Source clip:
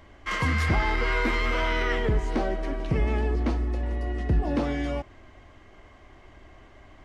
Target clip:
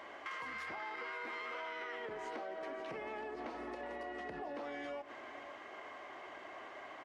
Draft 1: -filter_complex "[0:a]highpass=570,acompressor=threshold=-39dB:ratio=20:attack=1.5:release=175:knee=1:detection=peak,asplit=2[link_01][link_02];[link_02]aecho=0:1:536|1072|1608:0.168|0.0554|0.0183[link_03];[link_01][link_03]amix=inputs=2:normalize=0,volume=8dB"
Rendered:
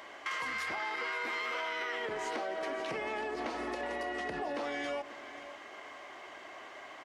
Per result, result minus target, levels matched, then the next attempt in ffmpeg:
8,000 Hz band +6.0 dB; downward compressor: peak gain reduction −5 dB
-filter_complex "[0:a]highpass=570,highshelf=frequency=3300:gain=-11,acompressor=threshold=-39dB:ratio=20:attack=1.5:release=175:knee=1:detection=peak,asplit=2[link_01][link_02];[link_02]aecho=0:1:536|1072|1608:0.168|0.0554|0.0183[link_03];[link_01][link_03]amix=inputs=2:normalize=0,volume=8dB"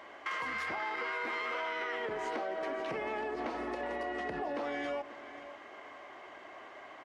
downward compressor: peak gain reduction −7 dB
-filter_complex "[0:a]highpass=570,highshelf=frequency=3300:gain=-11,acompressor=threshold=-46.5dB:ratio=20:attack=1.5:release=175:knee=1:detection=peak,asplit=2[link_01][link_02];[link_02]aecho=0:1:536|1072|1608:0.168|0.0554|0.0183[link_03];[link_01][link_03]amix=inputs=2:normalize=0,volume=8dB"

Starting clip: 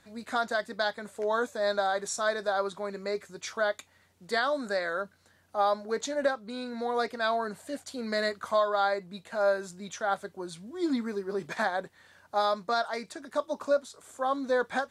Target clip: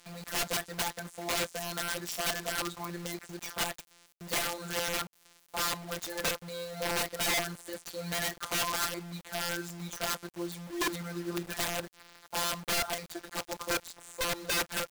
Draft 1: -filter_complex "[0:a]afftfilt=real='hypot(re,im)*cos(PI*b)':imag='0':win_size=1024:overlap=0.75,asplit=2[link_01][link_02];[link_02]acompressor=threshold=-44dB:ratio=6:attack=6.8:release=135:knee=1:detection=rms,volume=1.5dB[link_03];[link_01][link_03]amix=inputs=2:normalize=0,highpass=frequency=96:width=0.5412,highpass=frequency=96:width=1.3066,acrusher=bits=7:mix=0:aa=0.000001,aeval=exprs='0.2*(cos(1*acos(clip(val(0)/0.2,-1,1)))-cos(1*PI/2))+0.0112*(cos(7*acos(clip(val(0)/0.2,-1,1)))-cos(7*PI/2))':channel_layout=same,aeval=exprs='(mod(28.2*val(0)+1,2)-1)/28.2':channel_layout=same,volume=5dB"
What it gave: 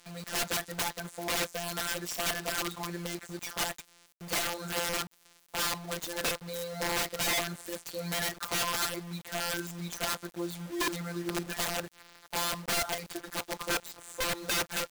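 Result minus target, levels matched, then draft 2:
downward compressor: peak gain reduction −6 dB
-filter_complex "[0:a]afftfilt=real='hypot(re,im)*cos(PI*b)':imag='0':win_size=1024:overlap=0.75,asplit=2[link_01][link_02];[link_02]acompressor=threshold=-51.5dB:ratio=6:attack=6.8:release=135:knee=1:detection=rms,volume=1.5dB[link_03];[link_01][link_03]amix=inputs=2:normalize=0,highpass=frequency=96:width=0.5412,highpass=frequency=96:width=1.3066,acrusher=bits=7:mix=0:aa=0.000001,aeval=exprs='0.2*(cos(1*acos(clip(val(0)/0.2,-1,1)))-cos(1*PI/2))+0.0112*(cos(7*acos(clip(val(0)/0.2,-1,1)))-cos(7*PI/2))':channel_layout=same,aeval=exprs='(mod(28.2*val(0)+1,2)-1)/28.2':channel_layout=same,volume=5dB"

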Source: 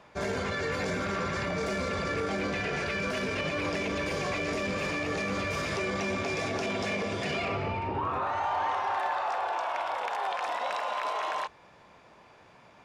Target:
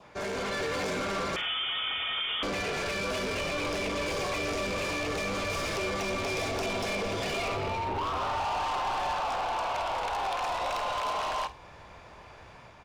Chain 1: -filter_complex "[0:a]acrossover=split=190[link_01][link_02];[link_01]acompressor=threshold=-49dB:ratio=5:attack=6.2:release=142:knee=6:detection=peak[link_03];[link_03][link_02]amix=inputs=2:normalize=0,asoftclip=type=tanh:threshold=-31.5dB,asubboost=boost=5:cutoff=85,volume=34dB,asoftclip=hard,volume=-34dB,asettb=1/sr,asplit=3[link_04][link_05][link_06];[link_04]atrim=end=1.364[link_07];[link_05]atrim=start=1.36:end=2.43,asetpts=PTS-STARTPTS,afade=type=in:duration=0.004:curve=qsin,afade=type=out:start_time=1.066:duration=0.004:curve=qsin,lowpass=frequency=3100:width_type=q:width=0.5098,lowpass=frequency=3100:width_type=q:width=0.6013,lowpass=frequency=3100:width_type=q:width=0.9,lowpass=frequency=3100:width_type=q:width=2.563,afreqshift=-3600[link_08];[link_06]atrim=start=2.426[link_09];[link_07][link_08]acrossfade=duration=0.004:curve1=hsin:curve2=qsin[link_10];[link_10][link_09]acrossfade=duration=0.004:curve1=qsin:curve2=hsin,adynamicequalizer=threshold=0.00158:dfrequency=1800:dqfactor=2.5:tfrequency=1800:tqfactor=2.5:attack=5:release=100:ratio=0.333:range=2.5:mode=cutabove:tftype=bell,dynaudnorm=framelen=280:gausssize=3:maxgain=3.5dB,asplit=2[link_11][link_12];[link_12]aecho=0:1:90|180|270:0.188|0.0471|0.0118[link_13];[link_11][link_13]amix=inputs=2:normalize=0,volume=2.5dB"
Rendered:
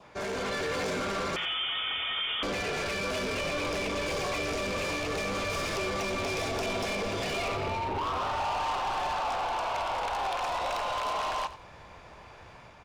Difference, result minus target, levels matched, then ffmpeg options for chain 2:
echo 40 ms late
-filter_complex "[0:a]acrossover=split=190[link_01][link_02];[link_01]acompressor=threshold=-49dB:ratio=5:attack=6.2:release=142:knee=6:detection=peak[link_03];[link_03][link_02]amix=inputs=2:normalize=0,asoftclip=type=tanh:threshold=-31.5dB,asubboost=boost=5:cutoff=85,volume=34dB,asoftclip=hard,volume=-34dB,asettb=1/sr,asplit=3[link_04][link_05][link_06];[link_04]atrim=end=1.364[link_07];[link_05]atrim=start=1.36:end=2.43,asetpts=PTS-STARTPTS,afade=type=in:duration=0.004:curve=qsin,afade=type=out:start_time=1.066:duration=0.004:curve=qsin,lowpass=frequency=3100:width_type=q:width=0.5098,lowpass=frequency=3100:width_type=q:width=0.6013,lowpass=frequency=3100:width_type=q:width=0.9,lowpass=frequency=3100:width_type=q:width=2.563,afreqshift=-3600[link_08];[link_06]atrim=start=2.426[link_09];[link_07][link_08]acrossfade=duration=0.004:curve1=hsin:curve2=qsin[link_10];[link_10][link_09]acrossfade=duration=0.004:curve1=qsin:curve2=hsin,adynamicequalizer=threshold=0.00158:dfrequency=1800:dqfactor=2.5:tfrequency=1800:tqfactor=2.5:attack=5:release=100:ratio=0.333:range=2.5:mode=cutabove:tftype=bell,dynaudnorm=framelen=280:gausssize=3:maxgain=3.5dB,asplit=2[link_11][link_12];[link_12]aecho=0:1:50|100|150:0.188|0.0471|0.0118[link_13];[link_11][link_13]amix=inputs=2:normalize=0,volume=2.5dB"

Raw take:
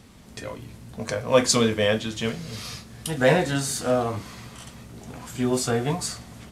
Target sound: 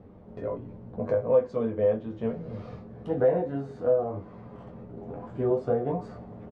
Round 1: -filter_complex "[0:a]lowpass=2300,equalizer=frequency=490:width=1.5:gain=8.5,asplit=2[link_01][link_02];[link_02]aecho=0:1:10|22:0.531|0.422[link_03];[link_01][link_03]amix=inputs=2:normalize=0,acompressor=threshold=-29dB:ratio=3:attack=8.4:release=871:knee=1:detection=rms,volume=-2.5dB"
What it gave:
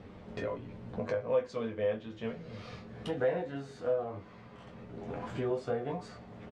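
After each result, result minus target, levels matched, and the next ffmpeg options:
2,000 Hz band +11.0 dB; downward compressor: peak gain reduction +8 dB
-filter_complex "[0:a]lowpass=870,equalizer=frequency=490:width=1.5:gain=8.5,asplit=2[link_01][link_02];[link_02]aecho=0:1:10|22:0.531|0.422[link_03];[link_01][link_03]amix=inputs=2:normalize=0,acompressor=threshold=-29dB:ratio=3:attack=8.4:release=871:knee=1:detection=rms,volume=-2.5dB"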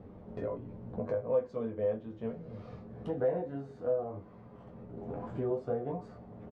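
downward compressor: peak gain reduction +7.5 dB
-filter_complex "[0:a]lowpass=870,equalizer=frequency=490:width=1.5:gain=8.5,asplit=2[link_01][link_02];[link_02]aecho=0:1:10|22:0.531|0.422[link_03];[link_01][link_03]amix=inputs=2:normalize=0,acompressor=threshold=-17.5dB:ratio=3:attack=8.4:release=871:knee=1:detection=rms,volume=-2.5dB"

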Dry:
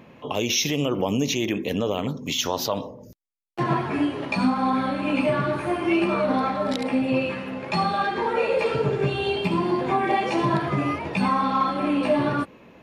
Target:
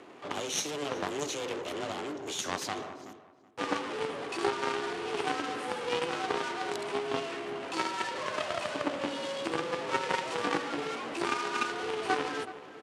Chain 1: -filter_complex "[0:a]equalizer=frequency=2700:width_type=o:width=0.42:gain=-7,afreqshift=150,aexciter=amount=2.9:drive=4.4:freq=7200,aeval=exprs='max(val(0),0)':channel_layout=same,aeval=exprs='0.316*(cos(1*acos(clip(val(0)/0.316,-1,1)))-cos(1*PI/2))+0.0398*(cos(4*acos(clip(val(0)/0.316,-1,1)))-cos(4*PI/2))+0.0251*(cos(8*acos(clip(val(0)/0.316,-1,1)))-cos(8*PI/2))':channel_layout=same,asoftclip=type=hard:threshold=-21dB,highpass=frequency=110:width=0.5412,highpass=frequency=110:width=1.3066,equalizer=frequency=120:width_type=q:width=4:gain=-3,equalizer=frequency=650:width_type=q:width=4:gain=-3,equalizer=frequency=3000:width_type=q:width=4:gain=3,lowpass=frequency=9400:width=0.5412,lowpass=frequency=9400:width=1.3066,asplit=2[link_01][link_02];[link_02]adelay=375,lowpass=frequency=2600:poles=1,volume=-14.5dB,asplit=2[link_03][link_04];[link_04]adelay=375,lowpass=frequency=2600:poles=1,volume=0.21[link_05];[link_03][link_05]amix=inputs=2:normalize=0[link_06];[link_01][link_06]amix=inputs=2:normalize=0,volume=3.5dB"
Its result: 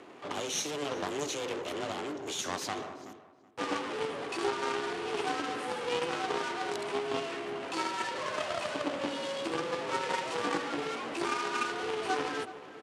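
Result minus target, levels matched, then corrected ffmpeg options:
hard clipping: distortion +39 dB
-filter_complex "[0:a]equalizer=frequency=2700:width_type=o:width=0.42:gain=-7,afreqshift=150,aexciter=amount=2.9:drive=4.4:freq=7200,aeval=exprs='max(val(0),0)':channel_layout=same,aeval=exprs='0.316*(cos(1*acos(clip(val(0)/0.316,-1,1)))-cos(1*PI/2))+0.0398*(cos(4*acos(clip(val(0)/0.316,-1,1)))-cos(4*PI/2))+0.0251*(cos(8*acos(clip(val(0)/0.316,-1,1)))-cos(8*PI/2))':channel_layout=same,asoftclip=type=hard:threshold=-13.5dB,highpass=frequency=110:width=0.5412,highpass=frequency=110:width=1.3066,equalizer=frequency=120:width_type=q:width=4:gain=-3,equalizer=frequency=650:width_type=q:width=4:gain=-3,equalizer=frequency=3000:width_type=q:width=4:gain=3,lowpass=frequency=9400:width=0.5412,lowpass=frequency=9400:width=1.3066,asplit=2[link_01][link_02];[link_02]adelay=375,lowpass=frequency=2600:poles=1,volume=-14.5dB,asplit=2[link_03][link_04];[link_04]adelay=375,lowpass=frequency=2600:poles=1,volume=0.21[link_05];[link_03][link_05]amix=inputs=2:normalize=0[link_06];[link_01][link_06]amix=inputs=2:normalize=0,volume=3.5dB"

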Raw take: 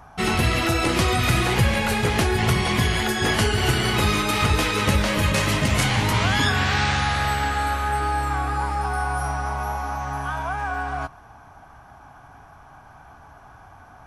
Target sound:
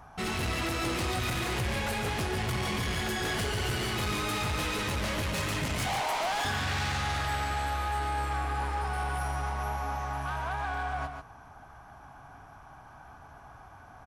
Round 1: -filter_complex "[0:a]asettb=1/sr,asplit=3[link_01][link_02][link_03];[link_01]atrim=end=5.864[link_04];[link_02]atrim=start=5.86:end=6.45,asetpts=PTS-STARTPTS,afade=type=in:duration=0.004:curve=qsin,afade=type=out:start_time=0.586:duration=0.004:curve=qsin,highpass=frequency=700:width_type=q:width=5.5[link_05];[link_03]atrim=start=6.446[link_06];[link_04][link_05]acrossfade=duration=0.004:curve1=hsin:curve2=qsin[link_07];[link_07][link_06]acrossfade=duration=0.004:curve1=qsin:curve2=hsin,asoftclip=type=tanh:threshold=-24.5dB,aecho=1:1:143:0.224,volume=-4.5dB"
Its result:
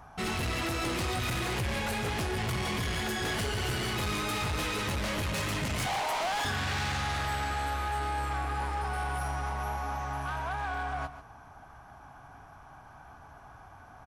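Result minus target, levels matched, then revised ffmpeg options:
echo-to-direct −6.5 dB
-filter_complex "[0:a]asettb=1/sr,asplit=3[link_01][link_02][link_03];[link_01]atrim=end=5.864[link_04];[link_02]atrim=start=5.86:end=6.45,asetpts=PTS-STARTPTS,afade=type=in:duration=0.004:curve=qsin,afade=type=out:start_time=0.586:duration=0.004:curve=qsin,highpass=frequency=700:width_type=q:width=5.5[link_05];[link_03]atrim=start=6.446[link_06];[link_04][link_05]acrossfade=duration=0.004:curve1=hsin:curve2=qsin[link_07];[link_07][link_06]acrossfade=duration=0.004:curve1=qsin:curve2=hsin,asoftclip=type=tanh:threshold=-24.5dB,aecho=1:1:143:0.473,volume=-4.5dB"

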